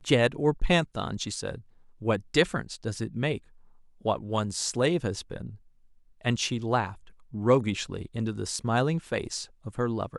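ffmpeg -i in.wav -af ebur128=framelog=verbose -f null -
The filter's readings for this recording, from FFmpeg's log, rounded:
Integrated loudness:
  I:         -28.6 LUFS
  Threshold: -39.0 LUFS
Loudness range:
  LRA:         2.6 LU
  Threshold: -49.7 LUFS
  LRA low:   -31.1 LUFS
  LRA high:  -28.5 LUFS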